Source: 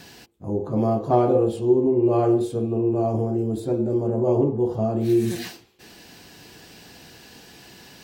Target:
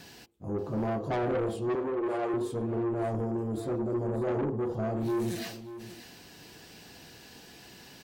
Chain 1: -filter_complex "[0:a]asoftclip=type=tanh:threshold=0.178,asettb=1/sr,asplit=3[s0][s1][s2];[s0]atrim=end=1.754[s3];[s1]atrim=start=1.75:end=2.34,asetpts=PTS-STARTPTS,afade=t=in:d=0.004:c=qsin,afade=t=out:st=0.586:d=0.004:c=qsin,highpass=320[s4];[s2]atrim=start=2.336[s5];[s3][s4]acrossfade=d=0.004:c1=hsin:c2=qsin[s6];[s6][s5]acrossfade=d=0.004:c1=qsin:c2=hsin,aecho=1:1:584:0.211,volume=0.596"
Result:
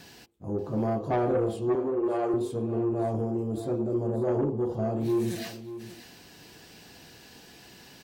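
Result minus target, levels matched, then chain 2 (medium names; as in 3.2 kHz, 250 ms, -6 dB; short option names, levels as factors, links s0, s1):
saturation: distortion -6 dB
-filter_complex "[0:a]asoftclip=type=tanh:threshold=0.0841,asettb=1/sr,asplit=3[s0][s1][s2];[s0]atrim=end=1.754[s3];[s1]atrim=start=1.75:end=2.34,asetpts=PTS-STARTPTS,afade=t=in:d=0.004:c=qsin,afade=t=out:st=0.586:d=0.004:c=qsin,highpass=320[s4];[s2]atrim=start=2.336[s5];[s3][s4]acrossfade=d=0.004:c1=hsin:c2=qsin[s6];[s6][s5]acrossfade=d=0.004:c1=qsin:c2=hsin,aecho=1:1:584:0.211,volume=0.596"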